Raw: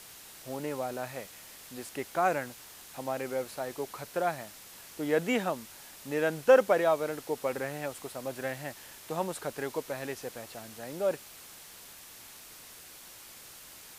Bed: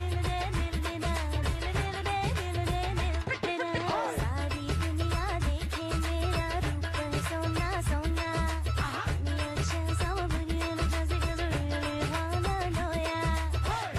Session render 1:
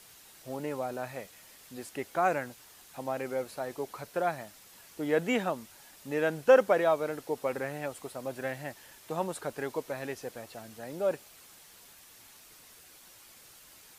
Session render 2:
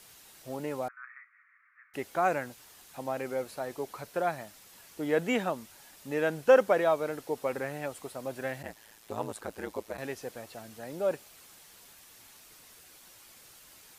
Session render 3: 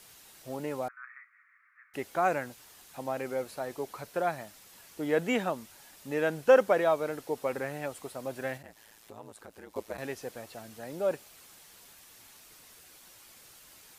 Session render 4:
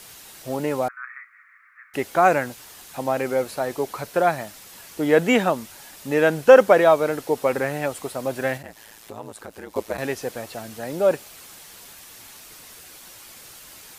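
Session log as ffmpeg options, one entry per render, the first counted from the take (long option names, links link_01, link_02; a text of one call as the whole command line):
ffmpeg -i in.wav -af "afftdn=noise_reduction=6:noise_floor=-50" out.wav
ffmpeg -i in.wav -filter_complex "[0:a]asettb=1/sr,asplit=3[link_01][link_02][link_03];[link_01]atrim=end=0.884[link_04];[link_02]atrim=start=0.88:end=1.94,asetpts=PTS-STARTPTS,afade=type=in:duration=0.004:curve=qsin,afade=type=out:start_time=1.056:duration=0.004:curve=qsin,asuperpass=centerf=1600:order=12:qfactor=1.5[link_05];[link_03]atrim=start=1.936[link_06];[link_04][link_05]acrossfade=duration=0.004:curve1=hsin:curve2=qsin[link_07];[link_07][link_06]acrossfade=duration=0.004:curve1=qsin:curve2=hsin,asplit=3[link_08][link_09][link_10];[link_08]afade=type=out:start_time=8.62:duration=0.02[link_11];[link_09]aeval=exprs='val(0)*sin(2*PI*55*n/s)':channel_layout=same,afade=type=in:start_time=8.62:duration=0.02,afade=type=out:start_time=9.97:duration=0.02[link_12];[link_10]afade=type=in:start_time=9.97:duration=0.02[link_13];[link_11][link_12][link_13]amix=inputs=3:normalize=0" out.wav
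ffmpeg -i in.wav -filter_complex "[0:a]asettb=1/sr,asplit=3[link_01][link_02][link_03];[link_01]atrim=end=8.574[link_04];[link_02]atrim=start=8.57:end=9.76,asetpts=PTS-STARTPTS,afade=type=in:duration=0.004:curve=qsin,afade=type=out:start_time=1.186:duration=0.004:curve=qsin,acompressor=threshold=-52dB:ratio=2:attack=3.2:release=140:knee=1:detection=peak[link_05];[link_03]atrim=start=9.756[link_06];[link_04][link_05]acrossfade=duration=0.004:curve1=hsin:curve2=qsin[link_07];[link_07][link_06]acrossfade=duration=0.004:curve1=qsin:curve2=hsin" out.wav
ffmpeg -i in.wav -af "volume=10.5dB,alimiter=limit=-1dB:level=0:latency=1" out.wav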